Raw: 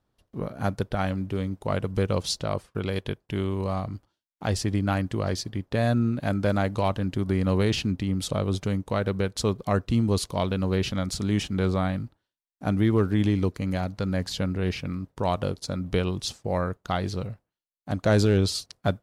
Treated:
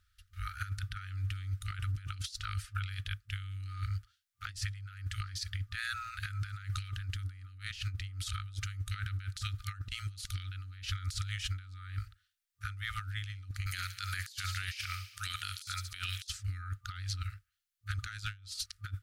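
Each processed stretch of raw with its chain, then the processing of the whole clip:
13.66–16.27 s: tilt EQ +3.5 dB/octave + feedback echo behind a high-pass 71 ms, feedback 65%, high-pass 1.7 kHz, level -20 dB
whole clip: FFT band-reject 100–1200 Hz; compressor with a negative ratio -37 dBFS, ratio -0.5; peak limiter -26 dBFS; trim +1 dB

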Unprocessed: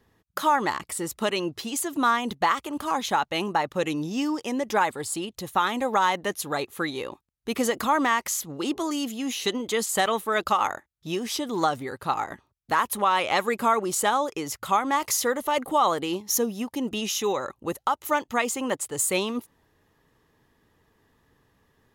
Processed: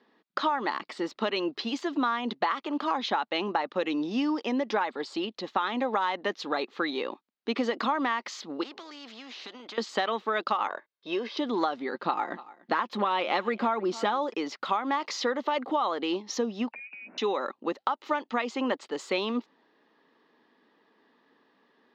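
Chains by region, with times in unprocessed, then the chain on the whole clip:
8.63–9.78 s: compression 3:1, threshold -32 dBFS + spectrum-flattening compressor 2:1
10.68–11.37 s: de-esser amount 95% + band-pass 220–5300 Hz + comb 1.9 ms, depth 55%
11.94–14.34 s: bass shelf 390 Hz +6.5 dB + comb 5.7 ms, depth 32% + delay 291 ms -23.5 dB
16.72–17.18 s: frequency inversion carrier 2.7 kHz + compression 16:1, threshold -41 dBFS
whole clip: elliptic band-pass 230–4500 Hz, stop band 40 dB; compression 5:1, threshold -26 dBFS; trim +2 dB

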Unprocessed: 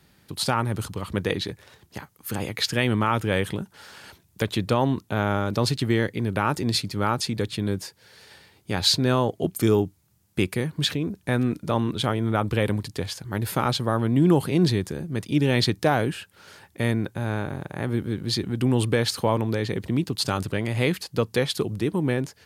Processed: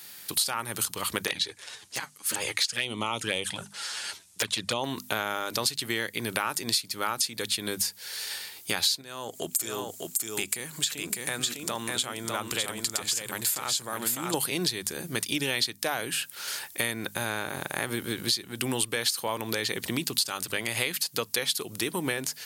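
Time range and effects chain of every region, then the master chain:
1.27–4.84 s: low-pass 9.6 kHz 24 dB/octave + touch-sensitive flanger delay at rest 12 ms, full sweep at -18 dBFS
9.01–14.34 s: peaking EQ 7.4 kHz +11.5 dB 0.3 oct + compression 2:1, threshold -36 dBFS + delay 603 ms -4 dB
whole clip: tilt EQ +4.5 dB/octave; hum notches 50/100/150/200/250 Hz; compression 6:1, threshold -32 dBFS; trim +6.5 dB

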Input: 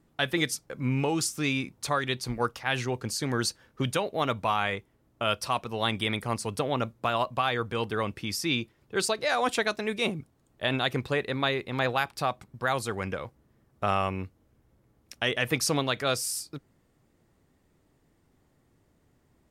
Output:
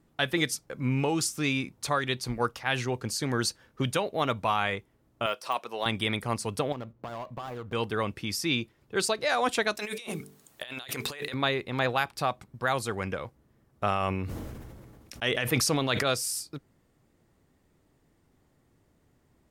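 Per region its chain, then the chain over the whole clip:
5.26–5.86 s: high-pass 400 Hz + de-esser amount 90%
6.72–7.73 s: median filter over 25 samples + peaking EQ 7.9 kHz -5.5 dB 2 oct + compression 4:1, threshold -35 dBFS
9.77–11.34 s: tilt EQ +3.5 dB/octave + de-hum 48.76 Hz, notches 9 + compressor with a negative ratio -38 dBFS
13.85–16.03 s: tremolo 4.8 Hz, depth 41% + decay stretcher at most 28 dB/s
whole clip: none

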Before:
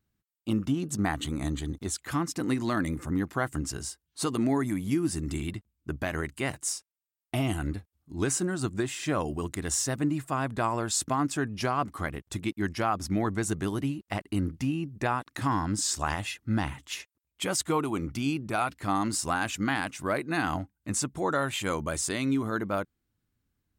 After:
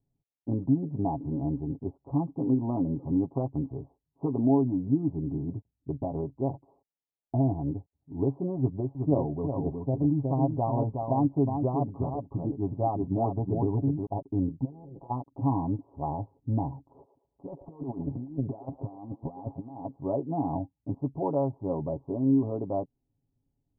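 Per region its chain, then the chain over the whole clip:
8.58–14.06 s: delay 367 ms -5 dB + phaser 1.8 Hz, delay 1.9 ms, feedback 25%
14.64–15.09 s: spectral peaks clipped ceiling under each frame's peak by 29 dB + comb 6 ms, depth 57% + compression 10:1, threshold -40 dBFS
16.89–19.86 s: compressor with a negative ratio -35 dBFS, ratio -0.5 + feedback echo behind a band-pass 112 ms, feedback 32%, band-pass 760 Hz, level -10.5 dB + loudspeaker Doppler distortion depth 0.38 ms
whole clip: steep low-pass 930 Hz 72 dB/octave; comb 7.3 ms, depth 65%

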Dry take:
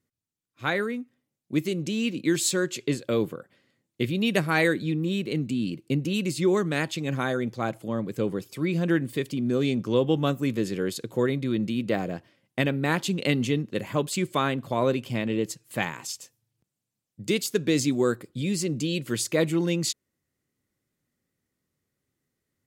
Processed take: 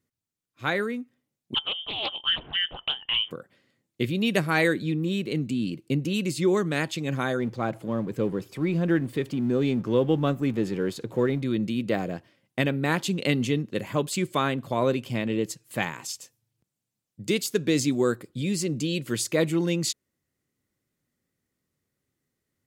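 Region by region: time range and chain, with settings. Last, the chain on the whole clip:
1.54–3.31 s: high-pass 290 Hz + frequency inversion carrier 3.4 kHz + loudspeaker Doppler distortion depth 0.43 ms
7.39–11.43 s: companding laws mixed up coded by mu + treble shelf 3.7 kHz -10.5 dB
whole clip: none

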